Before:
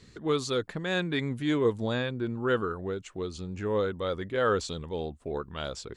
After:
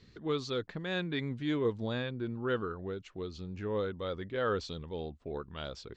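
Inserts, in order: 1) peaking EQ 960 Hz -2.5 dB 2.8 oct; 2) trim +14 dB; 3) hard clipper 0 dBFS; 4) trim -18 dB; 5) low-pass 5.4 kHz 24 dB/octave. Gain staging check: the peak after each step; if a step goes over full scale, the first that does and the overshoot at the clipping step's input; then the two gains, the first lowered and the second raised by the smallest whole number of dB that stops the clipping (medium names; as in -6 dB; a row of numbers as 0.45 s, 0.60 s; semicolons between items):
-16.0 dBFS, -2.0 dBFS, -2.0 dBFS, -20.0 dBFS, -20.0 dBFS; nothing clips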